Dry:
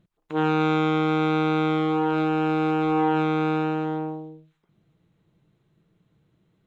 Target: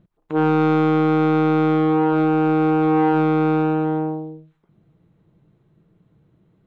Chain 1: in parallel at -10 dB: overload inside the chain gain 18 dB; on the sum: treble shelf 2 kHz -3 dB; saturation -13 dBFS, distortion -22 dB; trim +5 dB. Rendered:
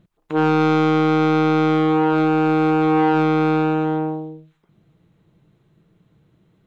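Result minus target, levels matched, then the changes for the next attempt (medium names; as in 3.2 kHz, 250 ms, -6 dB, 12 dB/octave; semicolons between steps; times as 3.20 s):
4 kHz band +6.5 dB
change: treble shelf 2 kHz -13 dB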